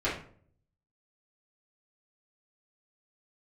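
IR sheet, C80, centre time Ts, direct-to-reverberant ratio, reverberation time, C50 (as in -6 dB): 11.0 dB, 33 ms, -11.0 dB, 0.50 s, 5.5 dB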